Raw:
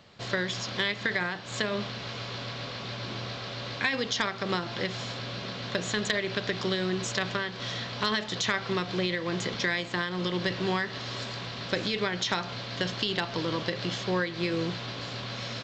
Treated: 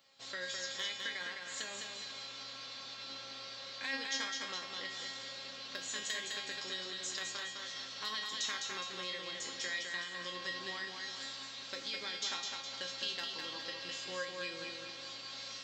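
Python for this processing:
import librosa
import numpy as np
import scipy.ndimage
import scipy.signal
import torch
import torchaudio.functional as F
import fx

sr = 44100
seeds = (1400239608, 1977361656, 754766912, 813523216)

y = fx.riaa(x, sr, side='recording')
y = fx.comb_fb(y, sr, f0_hz=270.0, decay_s=0.47, harmonics='all', damping=0.0, mix_pct=90)
y = fx.echo_feedback(y, sr, ms=207, feedback_pct=44, wet_db=-4.5)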